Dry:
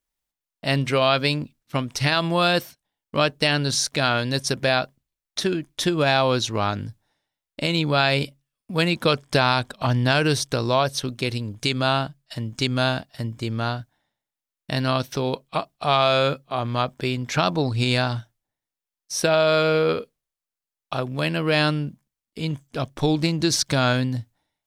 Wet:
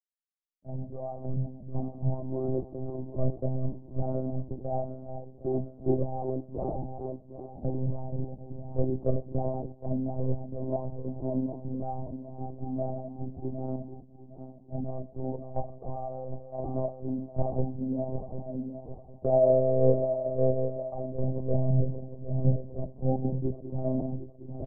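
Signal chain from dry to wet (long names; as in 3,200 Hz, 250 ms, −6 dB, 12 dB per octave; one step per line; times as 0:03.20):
feedback delay that plays each chunk backwards 380 ms, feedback 68%, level −8 dB
Butterworth low-pass 790 Hz 48 dB per octave
low-shelf EQ 160 Hz +8 dB
speech leveller within 3 dB 0.5 s
stiff-string resonator 72 Hz, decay 0.21 s, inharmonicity 0.03
repeating echo 109 ms, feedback 40%, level −21 dB
one-pitch LPC vocoder at 8 kHz 130 Hz
multiband upward and downward expander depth 70%
level −2 dB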